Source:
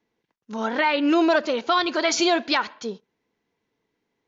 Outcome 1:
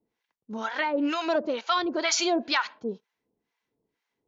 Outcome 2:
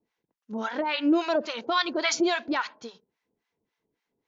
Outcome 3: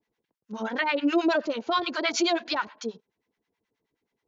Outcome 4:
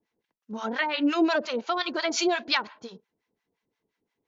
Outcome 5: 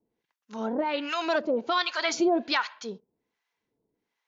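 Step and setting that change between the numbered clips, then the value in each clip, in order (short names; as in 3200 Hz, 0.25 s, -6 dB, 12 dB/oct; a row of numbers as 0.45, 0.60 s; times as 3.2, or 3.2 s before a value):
harmonic tremolo, rate: 2.1, 3.6, 9.4, 5.7, 1.3 Hz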